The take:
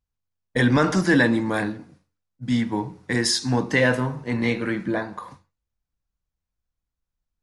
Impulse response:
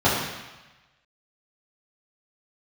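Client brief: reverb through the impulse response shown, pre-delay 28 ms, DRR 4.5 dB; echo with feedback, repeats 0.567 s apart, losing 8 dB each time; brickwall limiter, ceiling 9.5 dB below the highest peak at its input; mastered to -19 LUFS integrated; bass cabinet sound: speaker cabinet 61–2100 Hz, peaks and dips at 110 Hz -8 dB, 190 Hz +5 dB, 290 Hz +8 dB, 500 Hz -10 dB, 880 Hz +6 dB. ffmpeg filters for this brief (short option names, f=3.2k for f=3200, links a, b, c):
-filter_complex "[0:a]alimiter=limit=-16dB:level=0:latency=1,aecho=1:1:567|1134|1701|2268|2835:0.398|0.159|0.0637|0.0255|0.0102,asplit=2[a][b];[1:a]atrim=start_sample=2205,adelay=28[c];[b][c]afir=irnorm=-1:irlink=0,volume=-24dB[d];[a][d]amix=inputs=2:normalize=0,highpass=f=61:w=0.5412,highpass=f=61:w=1.3066,equalizer=f=110:t=q:w=4:g=-8,equalizer=f=190:t=q:w=4:g=5,equalizer=f=290:t=q:w=4:g=8,equalizer=f=500:t=q:w=4:g=-10,equalizer=f=880:t=q:w=4:g=6,lowpass=f=2.1k:w=0.5412,lowpass=f=2.1k:w=1.3066,volume=4dB"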